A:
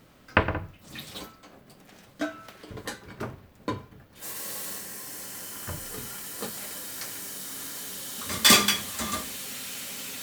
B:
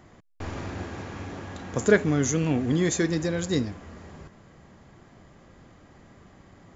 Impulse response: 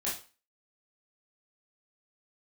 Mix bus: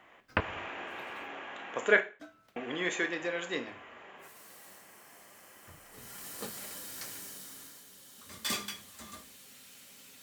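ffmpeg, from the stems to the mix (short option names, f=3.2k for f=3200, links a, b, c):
-filter_complex "[0:a]agate=range=-10dB:threshold=-49dB:ratio=16:detection=peak,volume=4.5dB,afade=t=out:st=0.92:d=0.54:silence=0.298538,afade=t=in:st=5.91:d=0.35:silence=0.223872,afade=t=out:st=7.13:d=0.71:silence=0.281838[a];[1:a]highpass=600,highshelf=f=3.7k:t=q:w=3:g=-9,volume=-3dB,asplit=3[b][c][d];[b]atrim=end=2.01,asetpts=PTS-STARTPTS,afade=t=out:st=2.006:d=0.004:c=hsin[e];[c]atrim=start=2.01:end=2.56,asetpts=PTS-STARTPTS,volume=0[f];[d]atrim=start=2.56,asetpts=PTS-STARTPTS,afade=t=in:d=0.004:c=hsin[g];[e][f][g]concat=n=3:v=0:a=1,asplit=3[h][i][j];[i]volume=-11dB[k];[j]apad=whole_len=450885[l];[a][l]sidechaincompress=threshold=-53dB:ratio=8:attack=16:release=128[m];[2:a]atrim=start_sample=2205[n];[k][n]afir=irnorm=-1:irlink=0[o];[m][h][o]amix=inputs=3:normalize=0"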